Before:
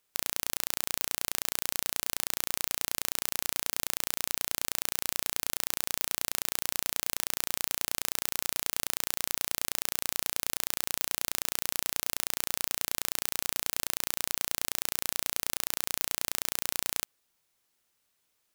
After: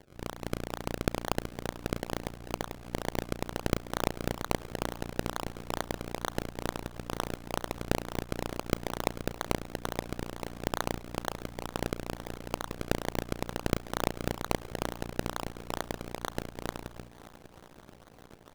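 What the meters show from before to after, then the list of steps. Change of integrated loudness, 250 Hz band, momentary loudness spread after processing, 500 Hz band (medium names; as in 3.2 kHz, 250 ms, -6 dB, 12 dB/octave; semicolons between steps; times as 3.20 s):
-5.5 dB, +12.5 dB, 7 LU, +10.0 dB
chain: fade out at the end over 3.49 s; crackle 290 per s -43 dBFS; bass shelf 160 Hz +7 dB; in parallel at +2 dB: peak limiter -9 dBFS, peak gain reduction 7.5 dB; on the sum: phase shifter stages 12, 2.9 Hz, lowest notch 380–4900 Hz; de-hum 59.18 Hz, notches 5; decimation with a swept rate 33×, swing 100% 2.2 Hz; saturation -10 dBFS, distortion -10 dB; on a send: shuffle delay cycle 969 ms, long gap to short 1.5:1, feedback 57%, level -19.5 dB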